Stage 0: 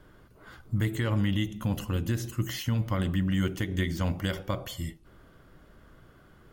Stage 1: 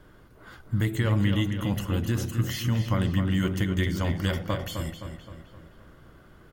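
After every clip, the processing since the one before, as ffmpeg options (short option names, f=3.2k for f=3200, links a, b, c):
-filter_complex "[0:a]asplit=2[a][b];[b]adelay=260,lowpass=f=4.3k:p=1,volume=-7dB,asplit=2[c][d];[d]adelay=260,lowpass=f=4.3k:p=1,volume=0.52,asplit=2[e][f];[f]adelay=260,lowpass=f=4.3k:p=1,volume=0.52,asplit=2[g][h];[h]adelay=260,lowpass=f=4.3k:p=1,volume=0.52,asplit=2[i][j];[j]adelay=260,lowpass=f=4.3k:p=1,volume=0.52,asplit=2[k][l];[l]adelay=260,lowpass=f=4.3k:p=1,volume=0.52[m];[a][c][e][g][i][k][m]amix=inputs=7:normalize=0,volume=2dB"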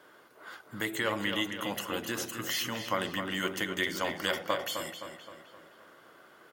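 -af "highpass=480,volume=2.5dB"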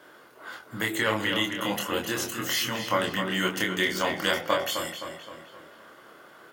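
-af "flanger=delay=22.5:depth=5:speed=0.41,volume=8.5dB"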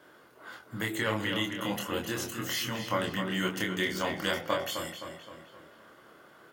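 -af "lowshelf=f=220:g=7.5,volume=-5.5dB"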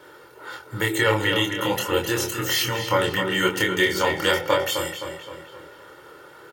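-af "aecho=1:1:2.2:0.75,volume=8dB"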